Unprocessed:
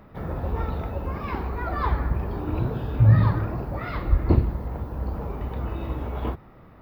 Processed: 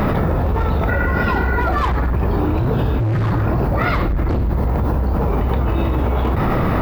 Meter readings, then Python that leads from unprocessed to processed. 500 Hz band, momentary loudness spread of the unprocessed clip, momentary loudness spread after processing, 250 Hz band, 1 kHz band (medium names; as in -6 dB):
+11.0 dB, 12 LU, 1 LU, +9.5 dB, +11.0 dB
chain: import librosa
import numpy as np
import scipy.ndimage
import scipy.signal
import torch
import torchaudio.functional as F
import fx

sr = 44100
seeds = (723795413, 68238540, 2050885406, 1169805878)

y = np.clip(x, -10.0 ** (-22.0 / 20.0), 10.0 ** (-22.0 / 20.0))
y = fx.spec_repair(y, sr, seeds[0], start_s=0.91, length_s=0.68, low_hz=1100.0, high_hz=2400.0, source='after')
y = fx.env_flatten(y, sr, amount_pct=100)
y = y * 10.0 ** (5.5 / 20.0)